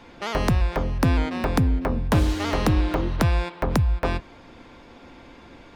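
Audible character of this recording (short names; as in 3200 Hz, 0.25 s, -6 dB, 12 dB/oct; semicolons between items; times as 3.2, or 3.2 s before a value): noise floor -48 dBFS; spectral tilt -6.0 dB/oct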